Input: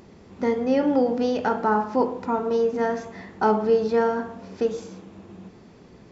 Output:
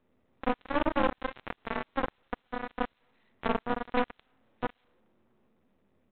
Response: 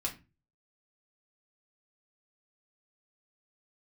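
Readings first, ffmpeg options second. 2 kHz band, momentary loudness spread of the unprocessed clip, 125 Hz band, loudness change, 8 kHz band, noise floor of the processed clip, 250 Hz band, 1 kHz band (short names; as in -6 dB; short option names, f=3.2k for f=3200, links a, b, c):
-3.0 dB, 12 LU, -8.0 dB, -10.5 dB, n/a, -74 dBFS, -11.0 dB, -8.0 dB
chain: -filter_complex "[0:a]afreqshift=29,acrossover=split=890[a][b];[b]acompressor=threshold=-40dB:ratio=6[c];[a][c]amix=inputs=2:normalize=0,aecho=1:1:114:0.168[d];[1:a]atrim=start_sample=2205,afade=t=out:st=0.22:d=0.01,atrim=end_sample=10143,asetrate=79380,aresample=44100[e];[d][e]afir=irnorm=-1:irlink=0,aeval=exprs='0.266*(cos(1*acos(clip(val(0)/0.266,-1,1)))-cos(1*PI/2))+0.0075*(cos(3*acos(clip(val(0)/0.266,-1,1)))-cos(3*PI/2))+0.00668*(cos(5*acos(clip(val(0)/0.266,-1,1)))-cos(5*PI/2))+0.0473*(cos(7*acos(clip(val(0)/0.266,-1,1)))-cos(7*PI/2))+0.0266*(cos(8*acos(clip(val(0)/0.266,-1,1)))-cos(8*PI/2))':c=same,aresample=8000,aeval=exprs='max(val(0),0)':c=same,aresample=44100"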